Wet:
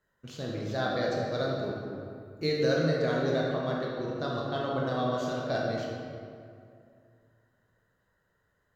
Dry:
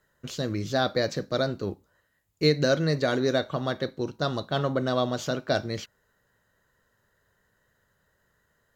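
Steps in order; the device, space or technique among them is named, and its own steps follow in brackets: swimming-pool hall (reverb RT60 2.4 s, pre-delay 17 ms, DRR -3.5 dB; high shelf 4100 Hz -6 dB); 1.32–2.92 high shelf 7900 Hz +5 dB; gain -8 dB

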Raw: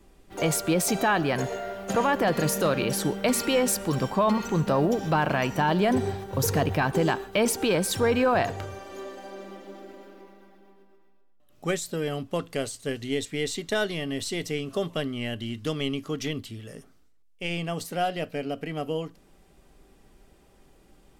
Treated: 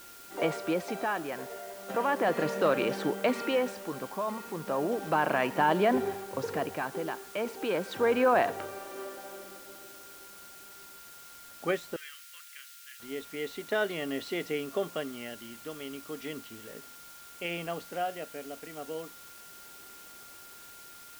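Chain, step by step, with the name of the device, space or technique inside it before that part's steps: shortwave radio (BPF 280–2600 Hz; tremolo 0.35 Hz, depth 67%; whine 1400 Hz -53 dBFS; white noise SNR 18 dB); 11.96–13 inverse Chebyshev high-pass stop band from 800 Hz, stop band 40 dB

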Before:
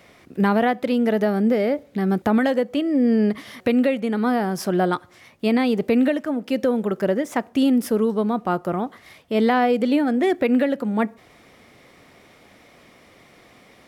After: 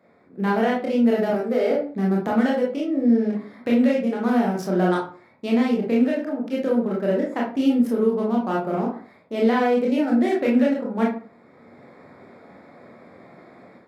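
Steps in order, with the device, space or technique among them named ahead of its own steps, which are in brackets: Wiener smoothing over 15 samples; 1.3–1.71 HPF 300 Hz 24 dB/oct; far laptop microphone (reverb RT60 0.40 s, pre-delay 21 ms, DRR -3.5 dB; HPF 160 Hz 12 dB/oct; AGC gain up to 10 dB); gain -8 dB

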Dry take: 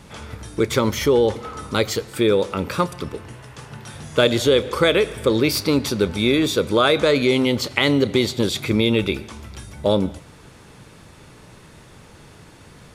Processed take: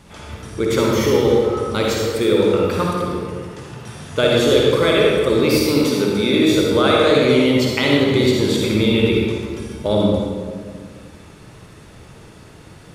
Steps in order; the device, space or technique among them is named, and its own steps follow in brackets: stairwell (reverb RT60 1.8 s, pre-delay 47 ms, DRR -3 dB); 5.84–6.52 HPF 140 Hz; gain -2.5 dB

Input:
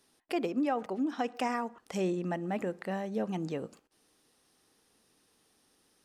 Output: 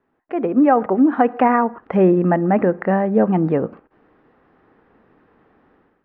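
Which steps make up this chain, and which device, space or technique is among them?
action camera in a waterproof case (LPF 1800 Hz 24 dB/oct; AGC gain up to 13.5 dB; gain +4 dB; AAC 96 kbps 22050 Hz)

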